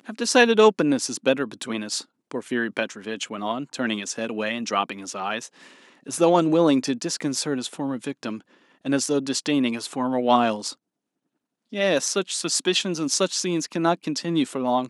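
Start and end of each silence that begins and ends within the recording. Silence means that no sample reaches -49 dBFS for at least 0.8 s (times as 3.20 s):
10.75–11.72 s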